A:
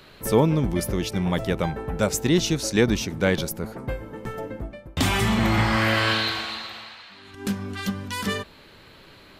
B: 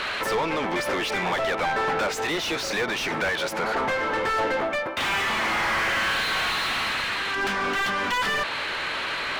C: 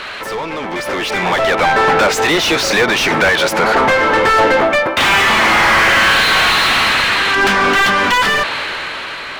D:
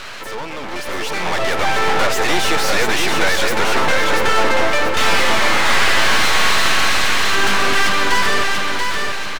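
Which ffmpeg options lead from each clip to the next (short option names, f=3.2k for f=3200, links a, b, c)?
-filter_complex "[0:a]acompressor=threshold=-28dB:ratio=10,bandpass=f=2.2k:t=q:w=0.65:csg=0,asplit=2[a][b];[b]highpass=f=720:p=1,volume=32dB,asoftclip=type=tanh:threshold=-23dB[c];[a][c]amix=inputs=2:normalize=0,lowpass=f=1.7k:p=1,volume=-6dB,volume=7.5dB"
-af "dynaudnorm=f=270:g=9:m=11.5dB,volume=2dB"
-filter_complex "[0:a]aeval=exprs='max(val(0),0)':c=same,asplit=2[a][b];[b]aecho=0:1:685|1370|2055|2740|3425:0.631|0.227|0.0818|0.0294|0.0106[c];[a][c]amix=inputs=2:normalize=0,volume=-1dB"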